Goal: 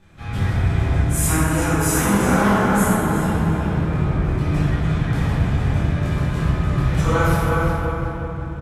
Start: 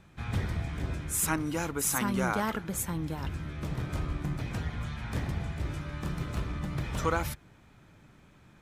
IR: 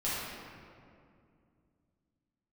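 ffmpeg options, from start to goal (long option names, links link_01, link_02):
-filter_complex "[0:a]asettb=1/sr,asplit=3[link_01][link_02][link_03];[link_01]atrim=end=3.514[link_04];[link_02]atrim=start=3.51:end=4.28,asetpts=PTS-STARTPTS,afade=type=in:duration=0.004:curve=qsin,afade=type=out:start_time=0.766:duration=0.004:curve=qsin,acrossover=split=2500[link_05][link_06];[link_06]acompressor=threshold=-57dB:ratio=4:attack=1:release=60[link_07];[link_05][link_07]amix=inputs=2:normalize=0[link_08];[link_03]atrim=start=4.276[link_09];[link_04][link_08]acrossfade=duration=0.004:curve1=hsin:curve2=qsin[link_10];[link_10][link_09]acrossfade=duration=0.004:curve1=qsin:curve2=hsin,asplit=2[link_11][link_12];[link_12]adelay=361,lowpass=frequency=3700:poles=1,volume=-4dB,asplit=2[link_13][link_14];[link_14]adelay=361,lowpass=frequency=3700:poles=1,volume=0.44,asplit=2[link_15][link_16];[link_16]adelay=361,lowpass=frequency=3700:poles=1,volume=0.44,asplit=2[link_17][link_18];[link_18]adelay=361,lowpass=frequency=3700:poles=1,volume=0.44,asplit=2[link_19][link_20];[link_20]adelay=361,lowpass=frequency=3700:poles=1,volume=0.44,asplit=2[link_21][link_22];[link_22]adelay=361,lowpass=frequency=3700:poles=1,volume=0.44[link_23];[link_11][link_13][link_15][link_17][link_19][link_21][link_23]amix=inputs=7:normalize=0[link_24];[1:a]atrim=start_sample=2205,asetrate=27342,aresample=44100[link_25];[link_24][link_25]afir=irnorm=-1:irlink=0"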